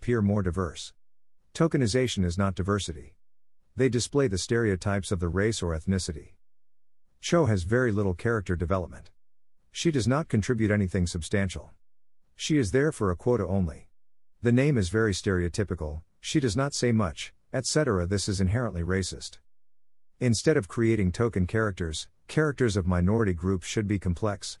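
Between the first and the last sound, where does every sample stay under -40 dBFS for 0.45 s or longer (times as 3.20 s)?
0.89–1.55 s
3.07–3.77 s
6.22–7.24 s
9.01–9.75 s
11.64–12.40 s
13.77–14.43 s
19.34–20.21 s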